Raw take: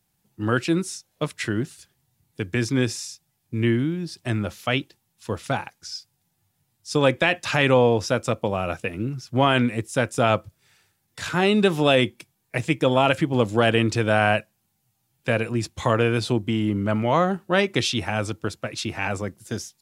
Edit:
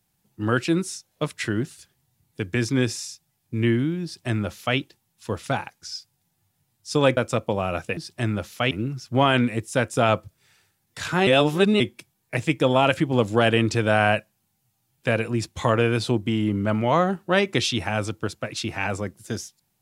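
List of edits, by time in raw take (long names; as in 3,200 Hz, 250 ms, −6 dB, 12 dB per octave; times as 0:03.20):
0:04.04–0:04.78: duplicate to 0:08.92
0:07.17–0:08.12: remove
0:11.48–0:12.01: reverse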